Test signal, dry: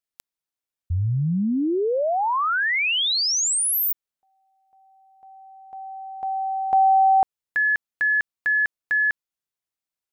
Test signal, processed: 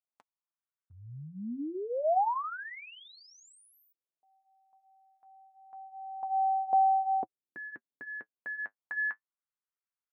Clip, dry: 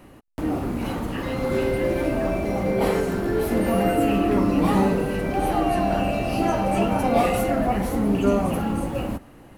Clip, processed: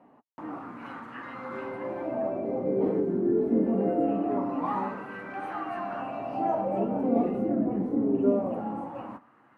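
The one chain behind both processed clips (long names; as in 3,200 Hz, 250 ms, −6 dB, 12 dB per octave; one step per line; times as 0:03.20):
octave-band graphic EQ 125/250/1,000/2,000/8,000 Hz +9/+11/+4/+3/+3 dB
LFO wah 0.23 Hz 350–1,400 Hz, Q 2.2
flanger 0.28 Hz, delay 4.2 ms, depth 6.1 ms, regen −47%
level −2 dB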